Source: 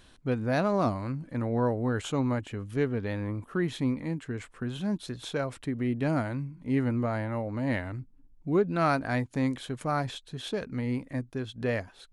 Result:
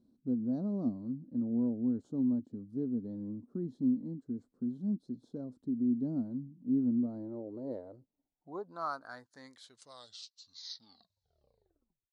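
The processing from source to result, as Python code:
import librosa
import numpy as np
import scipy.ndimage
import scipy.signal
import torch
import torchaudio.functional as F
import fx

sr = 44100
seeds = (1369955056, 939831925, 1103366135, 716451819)

y = fx.tape_stop_end(x, sr, length_s=2.49)
y = fx.curve_eq(y, sr, hz=(570.0, 1400.0, 2500.0, 4300.0), db=(0, -8, -23, 11))
y = fx.filter_sweep_bandpass(y, sr, from_hz=240.0, to_hz=3900.0, start_s=6.98, end_s=10.32, q=4.3)
y = y * librosa.db_to_amplitude(1.5)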